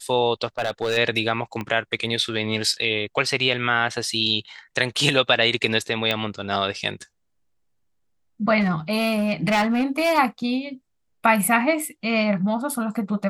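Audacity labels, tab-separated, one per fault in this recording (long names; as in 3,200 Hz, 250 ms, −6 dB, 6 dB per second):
0.580000	0.980000	clipping −18 dBFS
1.610000	1.610000	click −16 dBFS
6.110000	6.110000	click −9 dBFS
8.600000	10.190000	clipping −16 dBFS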